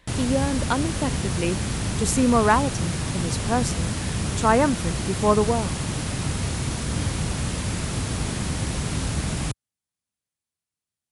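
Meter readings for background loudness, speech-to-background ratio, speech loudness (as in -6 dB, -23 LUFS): -27.0 LUFS, 2.5 dB, -24.5 LUFS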